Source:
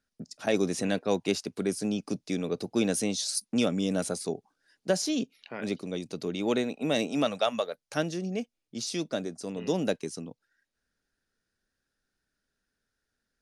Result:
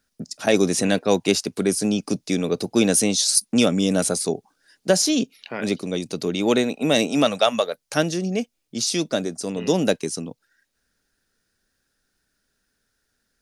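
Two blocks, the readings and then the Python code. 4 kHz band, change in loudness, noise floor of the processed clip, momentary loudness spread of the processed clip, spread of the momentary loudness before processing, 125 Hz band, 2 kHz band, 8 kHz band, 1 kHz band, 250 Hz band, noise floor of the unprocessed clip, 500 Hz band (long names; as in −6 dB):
+10.5 dB, +9.0 dB, −74 dBFS, 10 LU, 9 LU, +8.0 dB, +9.0 dB, +12.5 dB, +8.0 dB, +8.0 dB, −84 dBFS, +8.0 dB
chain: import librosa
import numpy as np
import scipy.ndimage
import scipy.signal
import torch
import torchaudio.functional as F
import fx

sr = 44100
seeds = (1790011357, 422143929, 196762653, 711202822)

y = fx.high_shelf(x, sr, hz=5400.0, db=6.5)
y = y * librosa.db_to_amplitude(8.0)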